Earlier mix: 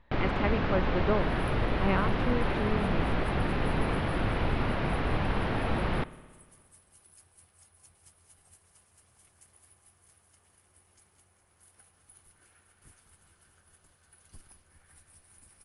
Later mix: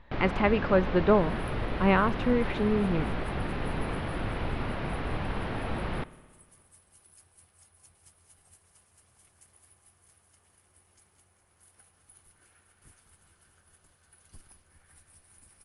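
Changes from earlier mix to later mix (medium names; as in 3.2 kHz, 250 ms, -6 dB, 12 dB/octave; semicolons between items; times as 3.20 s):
speech +6.5 dB; first sound -3.5 dB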